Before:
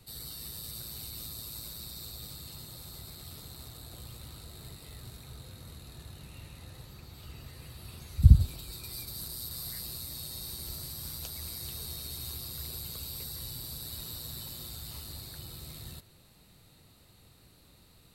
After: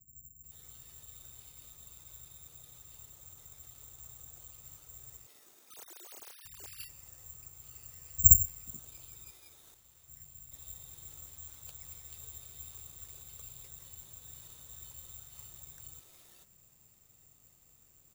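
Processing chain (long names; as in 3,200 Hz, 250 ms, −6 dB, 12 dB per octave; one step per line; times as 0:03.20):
0:05.26–0:06.45: three sine waves on the formant tracks
dynamic equaliser 200 Hz, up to −6 dB, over −59 dBFS, Q 0.83
0:09.30–0:10.08: tube saturation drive 50 dB, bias 0.8
multiband delay without the direct sound lows, highs 440 ms, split 250 Hz
bad sample-rate conversion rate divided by 6×, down filtered, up zero stuff
level −10 dB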